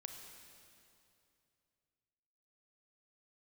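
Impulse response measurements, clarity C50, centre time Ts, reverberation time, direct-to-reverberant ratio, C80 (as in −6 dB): 4.5 dB, 63 ms, 2.7 s, 4.0 dB, 5.5 dB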